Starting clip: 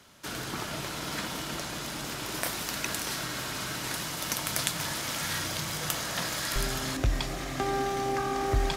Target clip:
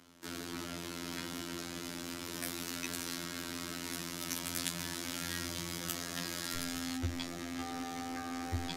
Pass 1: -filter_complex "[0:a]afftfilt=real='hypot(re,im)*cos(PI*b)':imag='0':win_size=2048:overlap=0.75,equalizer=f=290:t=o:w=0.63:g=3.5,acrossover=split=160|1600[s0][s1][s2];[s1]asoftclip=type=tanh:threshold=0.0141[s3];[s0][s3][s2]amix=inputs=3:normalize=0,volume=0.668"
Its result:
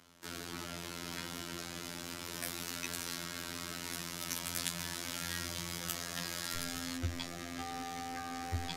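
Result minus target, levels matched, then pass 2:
250 Hz band -4.0 dB
-filter_complex "[0:a]afftfilt=real='hypot(re,im)*cos(PI*b)':imag='0':win_size=2048:overlap=0.75,equalizer=f=290:t=o:w=0.63:g=12,acrossover=split=160|1600[s0][s1][s2];[s1]asoftclip=type=tanh:threshold=0.0141[s3];[s0][s3][s2]amix=inputs=3:normalize=0,volume=0.668"

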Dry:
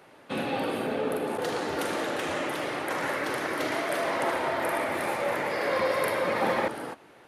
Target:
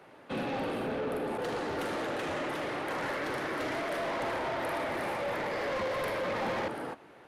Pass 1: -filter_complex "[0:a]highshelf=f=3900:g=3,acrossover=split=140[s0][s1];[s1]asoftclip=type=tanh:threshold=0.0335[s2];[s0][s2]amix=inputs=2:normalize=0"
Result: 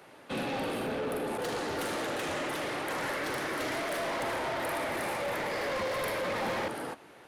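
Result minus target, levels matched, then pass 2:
8 kHz band +7.5 dB
-filter_complex "[0:a]highshelf=f=3900:g=-8,acrossover=split=140[s0][s1];[s1]asoftclip=type=tanh:threshold=0.0335[s2];[s0][s2]amix=inputs=2:normalize=0"

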